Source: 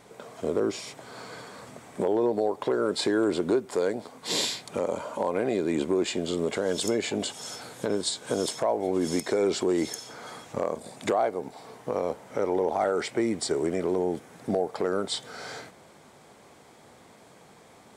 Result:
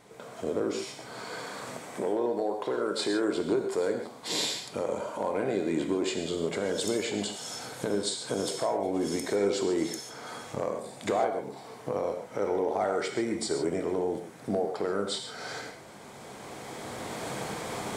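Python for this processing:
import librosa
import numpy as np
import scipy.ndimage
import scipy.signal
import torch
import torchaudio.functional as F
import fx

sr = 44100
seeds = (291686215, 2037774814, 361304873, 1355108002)

y = fx.recorder_agc(x, sr, target_db=-23.0, rise_db_per_s=9.5, max_gain_db=30)
y = fx.low_shelf(y, sr, hz=170.0, db=-9.5, at=(1.21, 3.37))
y = fx.rev_gated(y, sr, seeds[0], gate_ms=170, shape='flat', drr_db=4.0)
y = y * librosa.db_to_amplitude(-3.5)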